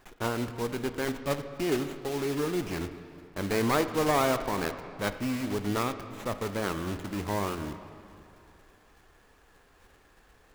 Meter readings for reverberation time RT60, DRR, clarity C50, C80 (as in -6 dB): 2.8 s, 9.5 dB, 10.5 dB, 11.5 dB